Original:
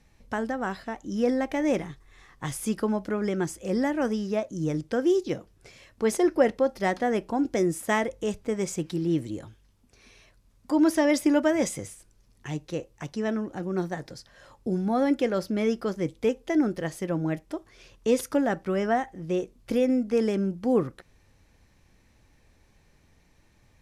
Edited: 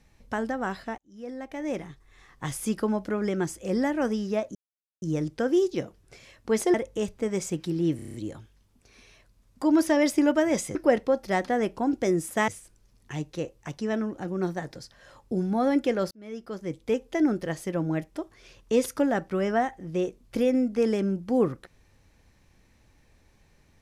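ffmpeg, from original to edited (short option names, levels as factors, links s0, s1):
-filter_complex "[0:a]asplit=13[s0][s1][s2][s3][s4][s5][s6][s7][s8][s9][s10][s11][s12];[s0]atrim=end=0.98,asetpts=PTS-STARTPTS,afade=t=out:st=0.976:d=0.004:c=hsin[s13];[s1]atrim=start=0.98:end=4.55,asetpts=PTS-STARTPTS,afade=t=in:d=1.46,afade=t=out:st=3.566:d=0.004:c=hsin,apad=pad_dur=0.47[s14];[s2]atrim=start=4.55:end=6.272,asetpts=PTS-STARTPTS,afade=t=in:d=0.004:c=hsin[s15];[s3]atrim=start=7.998:end=9.252[s16];[s4]atrim=start=9.218:end=9.252[s17];[s5]atrim=start=9.218:end=9.252[s18];[s6]atrim=start=9.218:end=9.252[s19];[s7]atrim=start=9.218:end=9.252[s20];[s8]atrim=start=9.218:end=9.252[s21];[s9]atrim=start=9.218:end=11.832[s22];[s10]atrim=start=6.268:end=8.002[s23];[s11]atrim=start=11.828:end=15.46,asetpts=PTS-STARTPTS,afade=t=out:st=3.628:d=0.004:c=hsin[s24];[s12]atrim=start=15.46,asetpts=PTS-STARTPTS,afade=t=in:d=0.95[s25];[s13][s14][s15]concat=n=3:v=0:a=1[s26];[s26][s16]acrossfade=d=0.004:c1=hsin:c2=hsin[s27];[s27][s17]acrossfade=d=0.004:c1=hsin:c2=hsin[s28];[s28][s18]acrossfade=d=0.004:c1=hsin:c2=hsin[s29];[s29][s19]acrossfade=d=0.004:c1=hsin:c2=hsin[s30];[s30][s20]acrossfade=d=0.004:c1=hsin:c2=hsin[s31];[s31][s21]acrossfade=d=0.004:c1=hsin:c2=hsin[s32];[s32][s22]acrossfade=d=0.004:c1=hsin:c2=hsin[s33];[s33][s23]acrossfade=d=0.004:c1=hsin:c2=hsin[s34];[s24][s25]concat=n=2:v=0:a=1[s35];[s34][s35]acrossfade=d=0.004:c1=hsin:c2=hsin"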